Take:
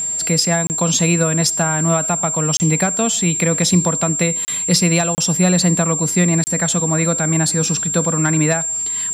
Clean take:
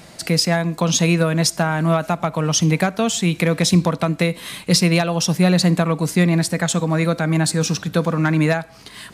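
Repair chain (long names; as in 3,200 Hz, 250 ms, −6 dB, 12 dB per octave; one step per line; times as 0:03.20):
notch filter 7,400 Hz, Q 30
repair the gap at 0:00.67/0:02.57/0:04.45/0:05.15/0:06.44, 29 ms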